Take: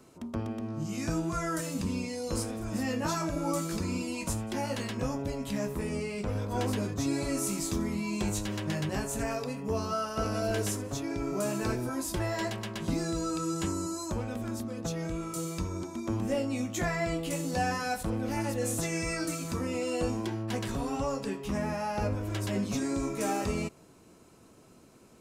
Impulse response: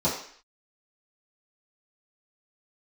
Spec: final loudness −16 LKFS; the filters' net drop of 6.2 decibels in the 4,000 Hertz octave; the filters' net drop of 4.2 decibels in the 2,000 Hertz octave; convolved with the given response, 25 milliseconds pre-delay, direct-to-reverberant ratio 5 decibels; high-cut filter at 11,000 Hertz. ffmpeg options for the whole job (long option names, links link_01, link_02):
-filter_complex "[0:a]lowpass=11000,equalizer=frequency=2000:width_type=o:gain=-3.5,equalizer=frequency=4000:width_type=o:gain=-7.5,asplit=2[link_01][link_02];[1:a]atrim=start_sample=2205,adelay=25[link_03];[link_02][link_03]afir=irnorm=-1:irlink=0,volume=-17.5dB[link_04];[link_01][link_04]amix=inputs=2:normalize=0,volume=14.5dB"